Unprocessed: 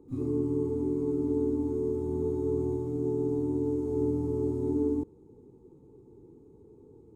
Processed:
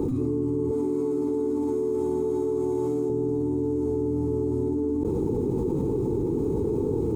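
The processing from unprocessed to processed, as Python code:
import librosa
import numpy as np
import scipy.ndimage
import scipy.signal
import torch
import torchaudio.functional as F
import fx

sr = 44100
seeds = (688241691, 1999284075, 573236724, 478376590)

y = fx.highpass(x, sr, hz=570.0, slope=6, at=(0.71, 3.1))
y = fx.env_flatten(y, sr, amount_pct=100)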